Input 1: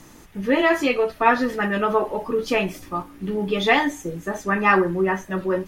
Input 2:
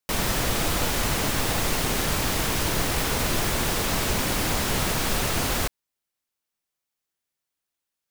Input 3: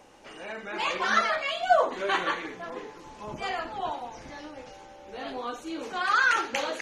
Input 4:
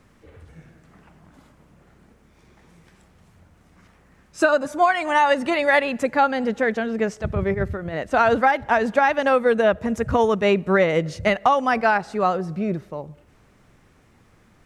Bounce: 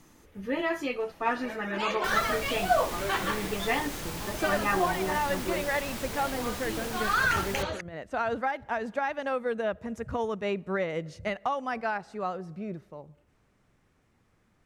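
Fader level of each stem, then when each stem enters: -11.0, -12.5, -3.0, -12.0 dB; 0.00, 1.95, 1.00, 0.00 s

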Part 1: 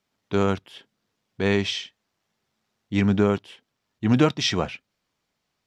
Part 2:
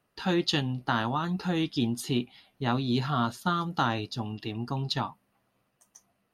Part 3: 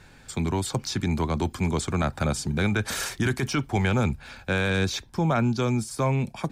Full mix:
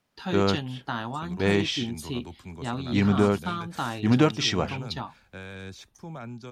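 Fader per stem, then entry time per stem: -1.5, -4.0, -16.0 dB; 0.00, 0.00, 0.85 s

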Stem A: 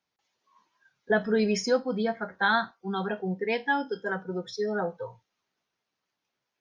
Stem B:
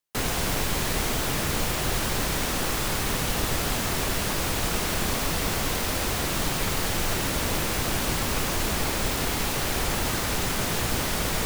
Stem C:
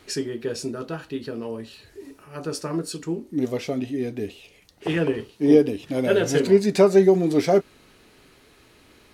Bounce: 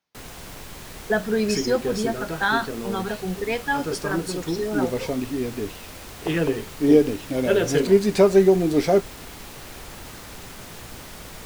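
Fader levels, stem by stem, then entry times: +2.0, -13.0, 0.0 dB; 0.00, 0.00, 1.40 s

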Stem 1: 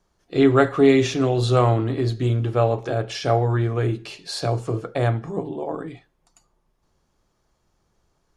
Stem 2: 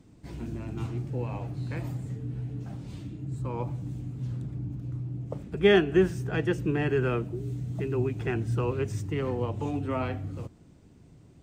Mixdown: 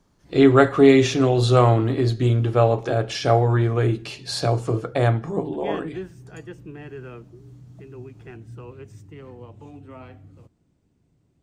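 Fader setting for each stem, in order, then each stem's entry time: +2.0, -11.5 dB; 0.00, 0.00 s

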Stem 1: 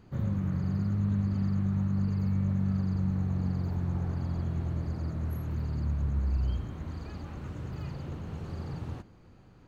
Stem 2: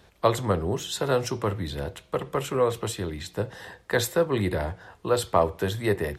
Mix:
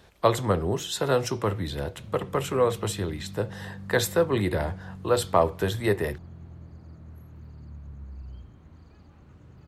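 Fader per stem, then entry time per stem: -12.5, +0.5 dB; 1.85, 0.00 s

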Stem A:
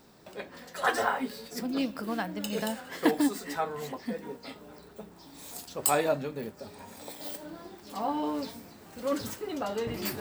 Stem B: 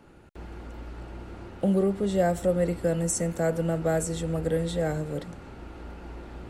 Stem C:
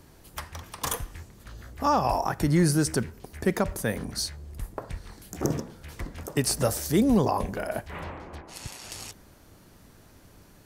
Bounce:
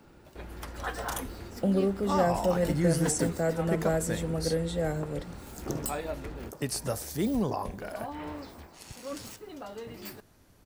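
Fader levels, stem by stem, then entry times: -9.0, -2.5, -7.0 dB; 0.00, 0.00, 0.25 s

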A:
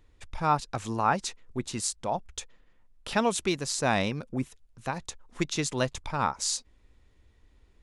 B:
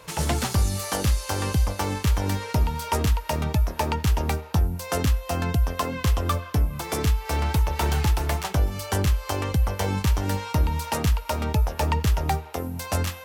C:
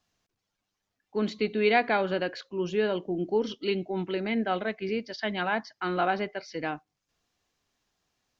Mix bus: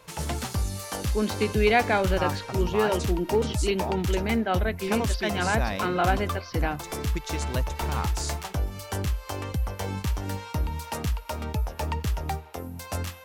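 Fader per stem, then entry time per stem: -5.5, -6.0, +2.0 dB; 1.75, 0.00, 0.00 s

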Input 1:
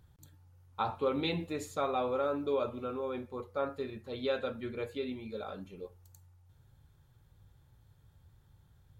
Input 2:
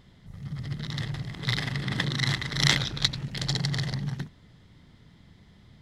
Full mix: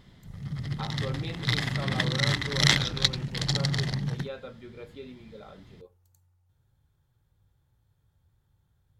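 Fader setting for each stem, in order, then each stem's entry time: -6.5, +1.0 dB; 0.00, 0.00 s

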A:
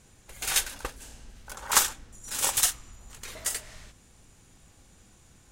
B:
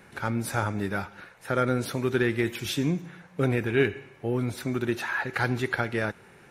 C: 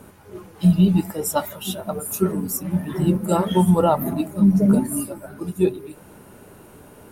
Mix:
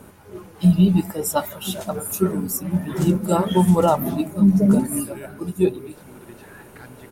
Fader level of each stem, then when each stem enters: -18.0, -17.5, +0.5 dB; 1.25, 1.40, 0.00 s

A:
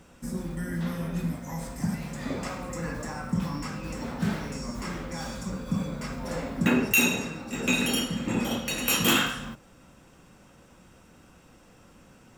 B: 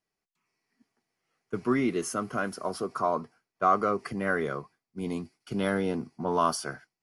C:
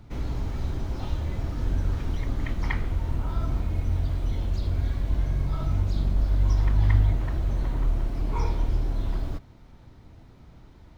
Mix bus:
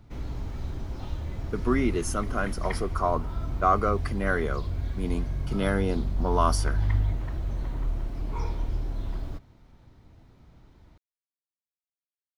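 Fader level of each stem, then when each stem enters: off, +1.0 dB, -4.5 dB; off, 0.00 s, 0.00 s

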